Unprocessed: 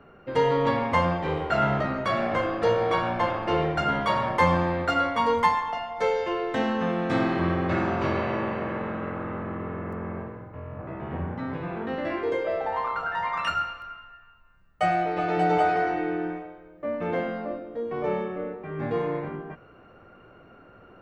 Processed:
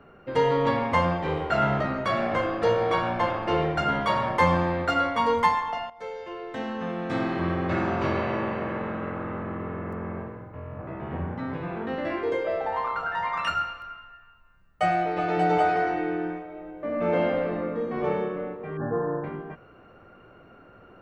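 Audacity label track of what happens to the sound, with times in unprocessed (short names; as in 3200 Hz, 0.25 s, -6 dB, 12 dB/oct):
5.900000	7.970000	fade in, from -15 dB
16.440000	17.980000	reverb throw, RT60 2.5 s, DRR -2.5 dB
18.770000	19.240000	brick-wall FIR low-pass 1800 Hz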